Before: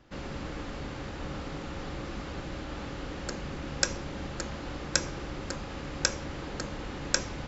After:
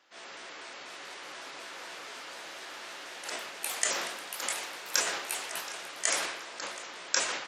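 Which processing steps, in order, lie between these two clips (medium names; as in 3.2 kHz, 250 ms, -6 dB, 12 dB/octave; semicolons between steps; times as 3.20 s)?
pitch shift switched off and on +3.5 st, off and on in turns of 122 ms; high-pass 440 Hz 12 dB/octave; tilt shelf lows -7 dB, about 730 Hz; transient shaper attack -4 dB, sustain +11 dB; on a send: feedback delay 725 ms, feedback 42%, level -18 dB; on the sum: ever faster or slower copies 773 ms, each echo +5 st, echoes 3, each echo -6 dB; speakerphone echo 120 ms, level -10 dB; resampled via 32 kHz; trim -5 dB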